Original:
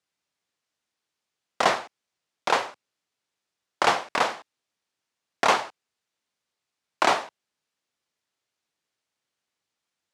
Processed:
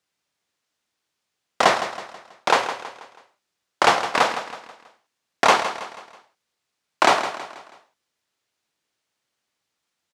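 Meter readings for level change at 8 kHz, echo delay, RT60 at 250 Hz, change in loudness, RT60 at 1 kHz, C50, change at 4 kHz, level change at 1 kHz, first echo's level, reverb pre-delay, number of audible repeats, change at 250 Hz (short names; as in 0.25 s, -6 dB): +5.0 dB, 0.162 s, none, +4.0 dB, none, none, +5.0 dB, +5.0 dB, -11.5 dB, none, 4, +5.0 dB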